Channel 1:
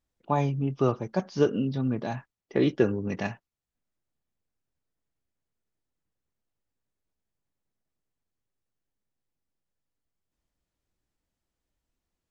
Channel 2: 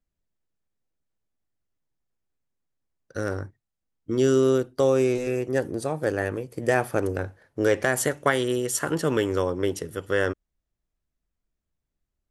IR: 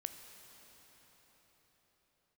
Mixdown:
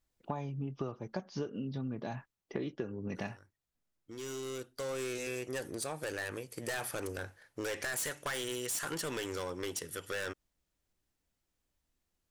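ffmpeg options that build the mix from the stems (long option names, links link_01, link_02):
-filter_complex "[0:a]volume=-0.5dB,asplit=2[link_01][link_02];[1:a]tiltshelf=frequency=1200:gain=-8,volume=26dB,asoftclip=hard,volume=-26dB,volume=-3.5dB[link_03];[link_02]apad=whole_len=542793[link_04];[link_03][link_04]sidechaincompress=threshold=-46dB:ratio=3:attack=26:release=1330[link_05];[link_01][link_05]amix=inputs=2:normalize=0,acompressor=threshold=-34dB:ratio=12"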